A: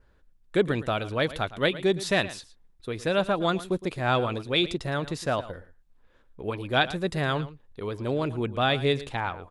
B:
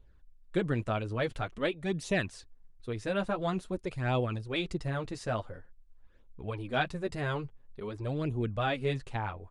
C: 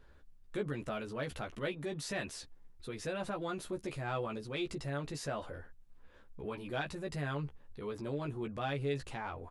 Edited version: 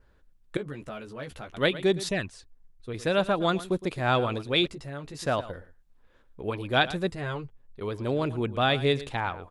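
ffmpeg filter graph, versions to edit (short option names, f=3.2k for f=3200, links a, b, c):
-filter_complex "[2:a]asplit=2[a][b];[1:a]asplit=2[c][d];[0:a]asplit=5[e][f][g][h][i];[e]atrim=end=0.572[j];[a]atrim=start=0.568:end=1.542[k];[f]atrim=start=1.538:end=2.092[l];[c]atrim=start=2.088:end=2.942[m];[g]atrim=start=2.938:end=4.672[n];[b]atrim=start=4.668:end=5.192[o];[h]atrim=start=5.188:end=7.122[p];[d]atrim=start=7.118:end=7.812[q];[i]atrim=start=7.808[r];[j][k]acrossfade=d=0.004:c1=hsin:c2=hsin[s];[s][l]acrossfade=d=0.004:c1=hsin:c2=hsin[t];[t][m]acrossfade=d=0.004:c1=hsin:c2=hsin[u];[u][n]acrossfade=d=0.004:c1=hsin:c2=hsin[v];[v][o]acrossfade=d=0.004:c1=hsin:c2=hsin[w];[w][p]acrossfade=d=0.004:c1=hsin:c2=hsin[x];[x][q]acrossfade=d=0.004:c1=hsin:c2=hsin[y];[y][r]acrossfade=d=0.004:c1=hsin:c2=hsin"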